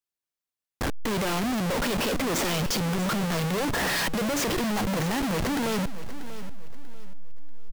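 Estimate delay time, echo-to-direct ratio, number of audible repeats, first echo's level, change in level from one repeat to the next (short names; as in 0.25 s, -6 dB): 0.639 s, -13.5 dB, 3, -14.0 dB, -10.0 dB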